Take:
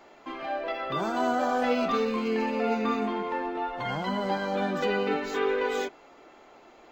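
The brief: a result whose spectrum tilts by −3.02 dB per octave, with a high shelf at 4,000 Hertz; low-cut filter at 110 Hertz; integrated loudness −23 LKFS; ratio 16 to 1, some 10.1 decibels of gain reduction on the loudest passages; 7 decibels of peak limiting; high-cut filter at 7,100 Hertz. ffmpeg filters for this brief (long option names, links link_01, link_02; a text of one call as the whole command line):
ffmpeg -i in.wav -af "highpass=110,lowpass=7100,highshelf=frequency=4000:gain=5,acompressor=threshold=-32dB:ratio=16,volume=15.5dB,alimiter=limit=-14.5dB:level=0:latency=1" out.wav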